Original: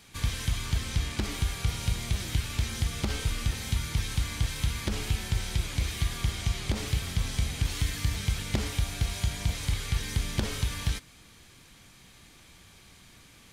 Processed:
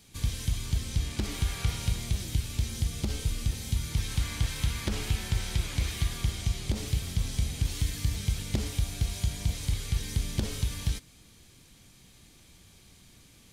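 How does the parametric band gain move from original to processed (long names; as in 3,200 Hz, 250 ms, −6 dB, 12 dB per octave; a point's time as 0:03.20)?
parametric band 1,400 Hz 2.3 octaves
0:00.94 −9.5 dB
0:01.62 +0.5 dB
0:02.30 −10 dB
0:03.72 −10 dB
0:04.24 −1 dB
0:05.88 −1 dB
0:06.57 −8 dB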